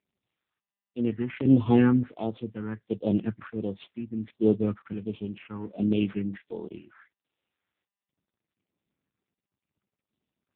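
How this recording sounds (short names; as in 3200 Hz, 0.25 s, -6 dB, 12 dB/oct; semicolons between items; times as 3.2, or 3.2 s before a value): a buzz of ramps at a fixed pitch in blocks of 8 samples; phasing stages 4, 1.4 Hz, lowest notch 580–1700 Hz; chopped level 0.69 Hz, depth 60%, duty 40%; AMR-NB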